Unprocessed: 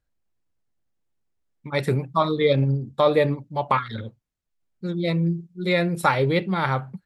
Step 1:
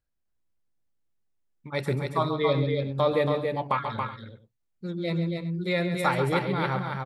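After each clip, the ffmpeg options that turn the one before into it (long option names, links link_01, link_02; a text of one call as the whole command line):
ffmpeg -i in.wav -af "aecho=1:1:136|278|375:0.335|0.562|0.126,volume=-5.5dB" out.wav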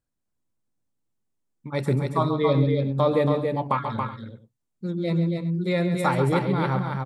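ffmpeg -i in.wav -af "equalizer=frequency=125:width_type=o:width=1:gain=7,equalizer=frequency=250:width_type=o:width=1:gain=9,equalizer=frequency=500:width_type=o:width=1:gain=3,equalizer=frequency=1000:width_type=o:width=1:gain=5,equalizer=frequency=8000:width_type=o:width=1:gain=7,volume=-3.5dB" out.wav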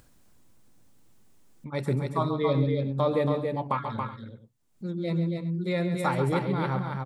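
ffmpeg -i in.wav -af "acompressor=mode=upward:threshold=-33dB:ratio=2.5,volume=-4dB" out.wav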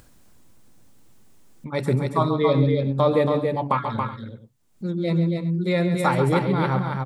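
ffmpeg -i in.wav -af "bandreject=frequency=141.7:width_type=h:width=4,bandreject=frequency=283.4:width_type=h:width=4,volume=6dB" out.wav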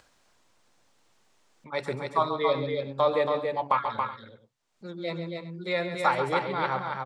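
ffmpeg -i in.wav -filter_complex "[0:a]acrossover=split=480 7100:gain=0.158 1 0.126[link_01][link_02][link_03];[link_01][link_02][link_03]amix=inputs=3:normalize=0,volume=-1dB" out.wav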